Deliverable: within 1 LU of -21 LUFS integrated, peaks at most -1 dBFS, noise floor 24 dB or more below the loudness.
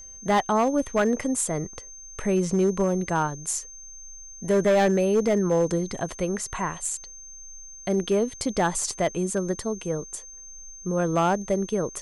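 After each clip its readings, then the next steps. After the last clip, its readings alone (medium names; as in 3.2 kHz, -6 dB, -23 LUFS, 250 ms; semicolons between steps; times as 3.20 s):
clipped samples 1.3%; clipping level -15.5 dBFS; steady tone 6.3 kHz; tone level -41 dBFS; loudness -25.0 LUFS; peak level -15.5 dBFS; loudness target -21.0 LUFS
-> clip repair -15.5 dBFS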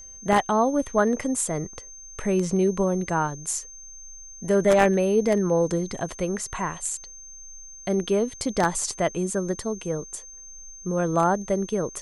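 clipped samples 0.0%; steady tone 6.3 kHz; tone level -41 dBFS
-> band-stop 6.3 kHz, Q 30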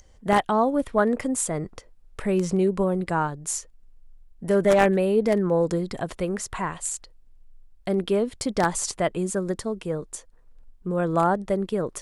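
steady tone not found; loudness -24.5 LUFS; peak level -6.5 dBFS; loudness target -21.0 LUFS
-> trim +3.5 dB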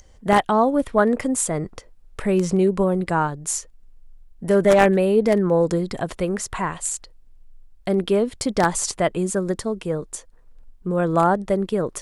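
loudness -21.0 LUFS; peak level -3.0 dBFS; noise floor -50 dBFS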